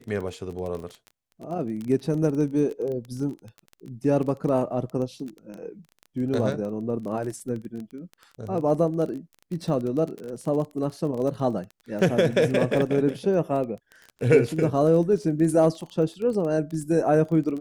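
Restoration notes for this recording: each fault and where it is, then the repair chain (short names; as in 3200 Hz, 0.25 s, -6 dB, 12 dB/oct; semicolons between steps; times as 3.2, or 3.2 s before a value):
crackle 21/s -31 dBFS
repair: de-click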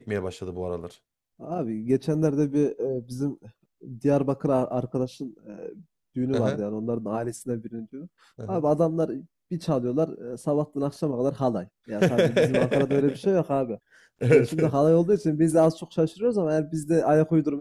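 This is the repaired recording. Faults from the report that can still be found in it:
none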